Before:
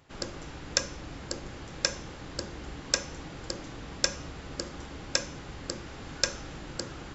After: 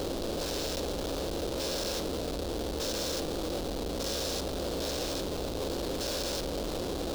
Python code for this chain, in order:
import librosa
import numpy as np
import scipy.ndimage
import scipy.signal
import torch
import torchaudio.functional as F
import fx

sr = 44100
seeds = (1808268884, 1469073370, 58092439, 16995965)

y = fx.spec_steps(x, sr, hold_ms=400)
y = fx.schmitt(y, sr, flips_db=-45.0)
y = fx.graphic_eq_10(y, sr, hz=(125, 500, 1000, 2000, 4000), db=(-9, 7, -4, -10, 8))
y = y * librosa.db_to_amplitude(8.0)